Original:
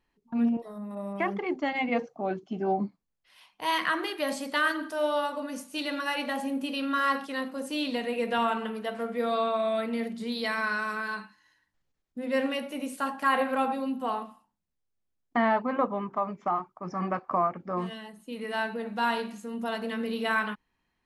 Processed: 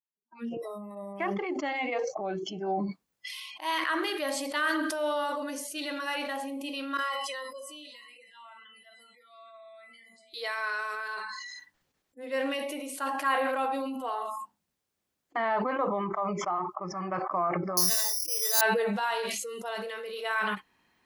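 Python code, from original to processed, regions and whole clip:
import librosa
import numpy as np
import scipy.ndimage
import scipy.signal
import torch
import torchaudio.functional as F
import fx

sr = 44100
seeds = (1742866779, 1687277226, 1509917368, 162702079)

y = fx.chain(x, sr, fx.comb_fb(f0_hz=1000.0, decay_s=0.32, harmonics='all', damping=0.0, mix_pct=90),
    fx.echo_stepped(ms=322, hz=260.0, octaves=1.4, feedback_pct=70, wet_db=-8.5), at=(6.97, 10.34))
y = fx.chain(y, sr, fx.notch(hz=2100.0, q=15.0),
    fx.resample_bad(factor=8, down='filtered', up='zero_stuff'), at=(17.77, 18.61))
y = fx.noise_reduce_blind(y, sr, reduce_db=27)
y = fx.highpass(y, sr, hz=200.0, slope=6)
y = fx.sustainer(y, sr, db_per_s=21.0)
y = F.gain(torch.from_numpy(y), -3.0).numpy()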